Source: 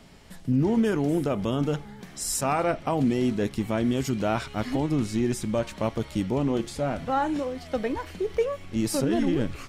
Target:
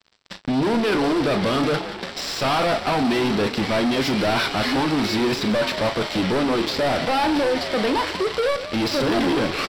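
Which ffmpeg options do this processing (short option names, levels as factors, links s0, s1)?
-filter_complex "[0:a]asplit=2[s0][s1];[s1]highpass=f=720:p=1,volume=25.1,asoftclip=type=tanh:threshold=0.282[s2];[s0][s2]amix=inputs=2:normalize=0,lowpass=f=3800:p=1,volume=0.501,aresample=16000,acrusher=bits=3:mix=0:aa=0.5,aresample=44100,asoftclip=type=tanh:threshold=0.141,asplit=2[s3][s4];[s4]adelay=38,volume=0.237[s5];[s3][s5]amix=inputs=2:normalize=0,asplit=7[s6][s7][s8][s9][s10][s11][s12];[s7]adelay=175,afreqshift=43,volume=0.2[s13];[s8]adelay=350,afreqshift=86,volume=0.117[s14];[s9]adelay=525,afreqshift=129,volume=0.0692[s15];[s10]adelay=700,afreqshift=172,volume=0.0412[s16];[s11]adelay=875,afreqshift=215,volume=0.0243[s17];[s12]adelay=1050,afreqshift=258,volume=0.0143[s18];[s6][s13][s14][s15][s16][s17][s18]amix=inputs=7:normalize=0,aexciter=amount=1:drive=4.2:freq=3700"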